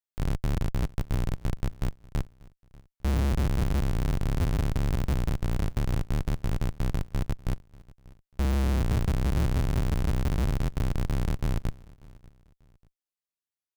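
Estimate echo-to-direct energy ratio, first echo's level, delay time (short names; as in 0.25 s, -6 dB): -22.5 dB, -23.0 dB, 0.59 s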